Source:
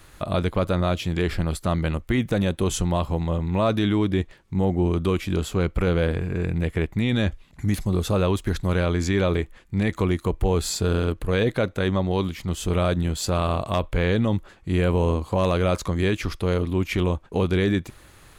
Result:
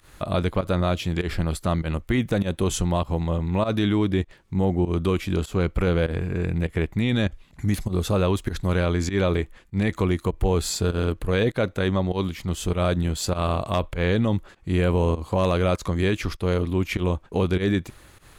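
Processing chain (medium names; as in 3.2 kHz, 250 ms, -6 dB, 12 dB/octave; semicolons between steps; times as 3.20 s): volume shaper 99 bpm, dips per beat 1, -17 dB, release 110 ms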